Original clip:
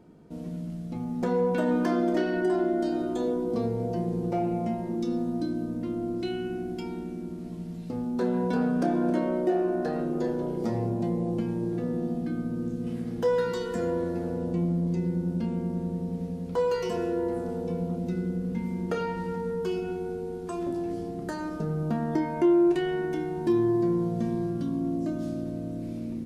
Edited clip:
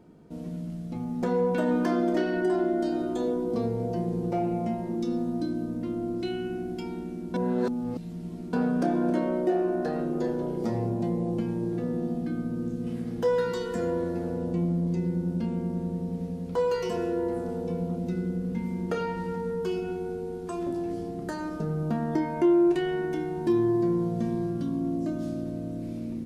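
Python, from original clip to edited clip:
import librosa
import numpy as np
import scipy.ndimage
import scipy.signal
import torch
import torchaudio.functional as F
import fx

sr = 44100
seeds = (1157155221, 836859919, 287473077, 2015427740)

y = fx.edit(x, sr, fx.reverse_span(start_s=7.34, length_s=1.19), tone=tone)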